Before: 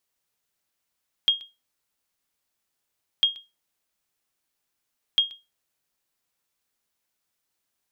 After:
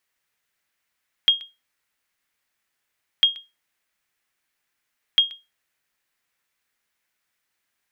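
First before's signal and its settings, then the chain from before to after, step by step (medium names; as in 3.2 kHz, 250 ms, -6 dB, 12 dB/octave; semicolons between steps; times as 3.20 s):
sonar ping 3.25 kHz, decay 0.23 s, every 1.95 s, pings 3, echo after 0.13 s, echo -21 dB -11.5 dBFS
peaking EQ 1.9 kHz +10 dB 1.2 oct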